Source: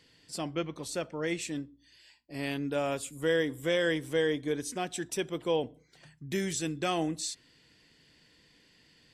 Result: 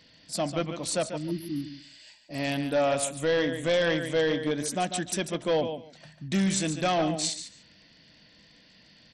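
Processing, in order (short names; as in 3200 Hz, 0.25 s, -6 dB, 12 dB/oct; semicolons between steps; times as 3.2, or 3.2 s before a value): thirty-one-band EQ 200 Hz +7 dB, 400 Hz -8 dB, 630 Hz +9 dB, 4000 Hz +4 dB, 10000 Hz +4 dB; 1.19–1.96 spectral repair 390–10000 Hz after; feedback echo 0.144 s, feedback 16%, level -10 dB; overloaded stage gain 24 dB; 0.88–3.09 high shelf 8800 Hz +8 dB; gain +4 dB; SBC 64 kbps 32000 Hz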